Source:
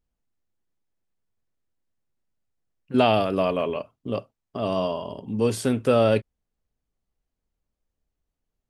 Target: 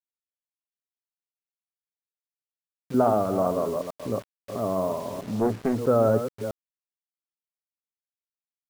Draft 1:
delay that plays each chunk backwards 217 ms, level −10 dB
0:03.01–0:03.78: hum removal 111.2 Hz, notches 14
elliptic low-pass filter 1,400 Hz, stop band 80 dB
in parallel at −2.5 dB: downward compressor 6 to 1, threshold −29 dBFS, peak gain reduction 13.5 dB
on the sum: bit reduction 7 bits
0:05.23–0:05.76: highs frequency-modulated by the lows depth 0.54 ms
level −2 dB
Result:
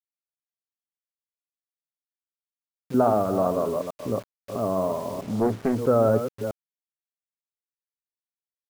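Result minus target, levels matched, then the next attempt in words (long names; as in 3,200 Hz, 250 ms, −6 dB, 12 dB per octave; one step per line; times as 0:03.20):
downward compressor: peak gain reduction −6.5 dB
delay that plays each chunk backwards 217 ms, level −10 dB
0:03.01–0:03.78: hum removal 111.2 Hz, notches 14
elliptic low-pass filter 1,400 Hz, stop band 80 dB
in parallel at −2.5 dB: downward compressor 6 to 1, threshold −37 dBFS, peak gain reduction 20 dB
on the sum: bit reduction 7 bits
0:05.23–0:05.76: highs frequency-modulated by the lows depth 0.54 ms
level −2 dB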